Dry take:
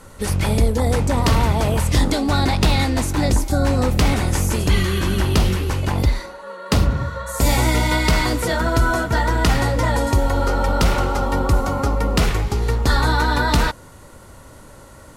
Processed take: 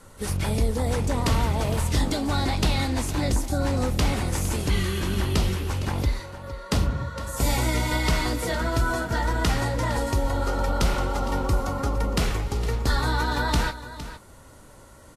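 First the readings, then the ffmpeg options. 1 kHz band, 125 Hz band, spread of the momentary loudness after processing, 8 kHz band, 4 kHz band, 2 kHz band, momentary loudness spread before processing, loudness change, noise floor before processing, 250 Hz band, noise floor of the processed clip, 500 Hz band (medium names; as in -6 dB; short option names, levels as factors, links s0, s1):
-6.5 dB, -6.5 dB, 4 LU, -5.0 dB, -5.5 dB, -6.5 dB, 4 LU, -6.5 dB, -43 dBFS, -6.5 dB, -48 dBFS, -6.5 dB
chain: -af "aecho=1:1:460:0.211,volume=0.473" -ar 44100 -c:a libvorbis -b:a 32k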